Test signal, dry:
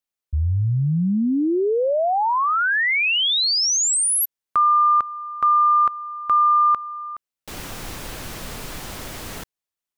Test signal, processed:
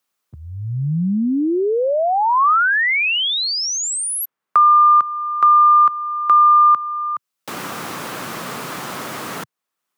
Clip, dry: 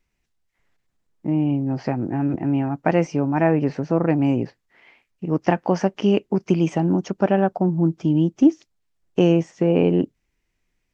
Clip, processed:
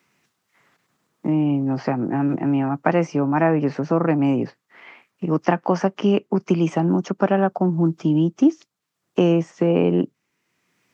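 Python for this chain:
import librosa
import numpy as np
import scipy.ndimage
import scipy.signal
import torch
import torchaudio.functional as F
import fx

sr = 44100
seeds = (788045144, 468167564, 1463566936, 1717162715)

y = scipy.signal.sosfilt(scipy.signal.butter(4, 130.0, 'highpass', fs=sr, output='sos'), x)
y = fx.peak_eq(y, sr, hz=1200.0, db=6.5, octaves=0.63)
y = fx.band_squash(y, sr, depth_pct=40)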